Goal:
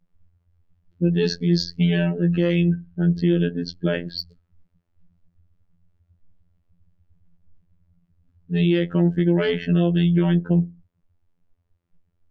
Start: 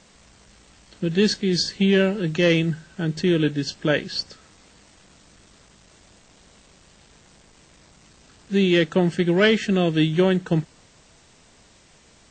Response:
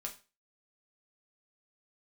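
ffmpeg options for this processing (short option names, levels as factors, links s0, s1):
-filter_complex "[0:a]lowshelf=f=260:g=9,asplit=2[s0][s1];[1:a]atrim=start_sample=2205[s2];[s1][s2]afir=irnorm=-1:irlink=0,volume=0.562[s3];[s0][s3]amix=inputs=2:normalize=0,afftfilt=real='hypot(re,im)*cos(PI*b)':imag='0':win_size=2048:overlap=0.75,adynamicsmooth=sensitivity=7.5:basefreq=1600,afftdn=nr=27:nf=-33,alimiter=limit=0.447:level=0:latency=1:release=125,volume=0.841"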